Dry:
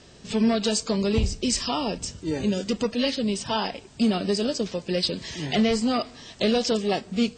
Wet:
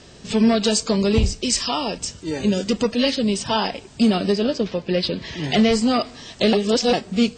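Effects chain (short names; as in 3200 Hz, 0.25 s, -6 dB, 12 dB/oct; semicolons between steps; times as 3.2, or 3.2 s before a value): 1.31–2.45 low shelf 460 Hz -6 dB; 4.32–5.44 LPF 3700 Hz 12 dB/oct; 6.53–6.93 reverse; gain +5 dB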